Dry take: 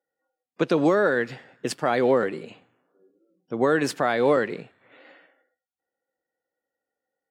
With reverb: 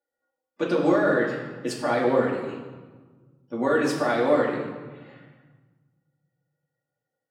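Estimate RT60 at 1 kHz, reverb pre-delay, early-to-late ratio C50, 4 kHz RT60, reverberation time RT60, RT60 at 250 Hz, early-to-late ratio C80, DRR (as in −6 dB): 1.4 s, 3 ms, 3.5 dB, 0.95 s, 1.4 s, 2.0 s, 5.5 dB, −5.0 dB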